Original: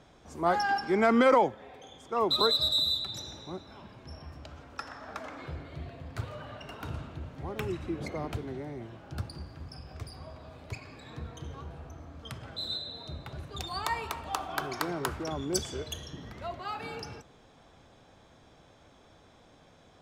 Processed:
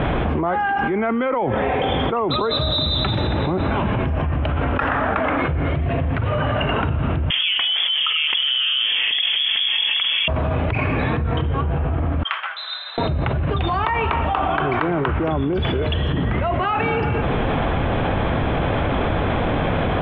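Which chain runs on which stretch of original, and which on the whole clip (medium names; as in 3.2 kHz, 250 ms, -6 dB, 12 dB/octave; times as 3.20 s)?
7.30–10.28 s: frequency inversion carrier 3.4 kHz + tilt EQ +4 dB/octave + tape noise reduction on one side only decoder only
12.23–12.98 s: expander -36 dBFS + high-pass 1.1 kHz 24 dB/octave + compression 3:1, threshold -56 dBFS
whole clip: steep low-pass 3.1 kHz 48 dB/octave; bass shelf 130 Hz +6 dB; level flattener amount 100%; trim -1.5 dB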